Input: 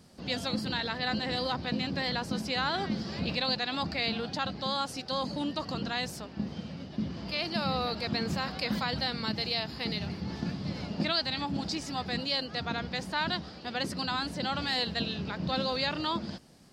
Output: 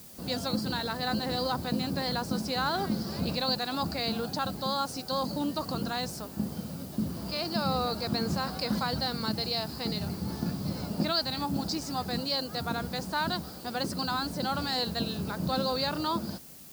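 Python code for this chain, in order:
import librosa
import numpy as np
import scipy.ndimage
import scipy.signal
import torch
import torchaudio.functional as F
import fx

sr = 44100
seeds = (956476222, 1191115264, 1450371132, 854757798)

y = fx.band_shelf(x, sr, hz=2500.0, db=-8.5, octaves=1.2)
y = fx.dmg_noise_colour(y, sr, seeds[0], colour='blue', level_db=-52.0)
y = y * 10.0 ** (2.0 / 20.0)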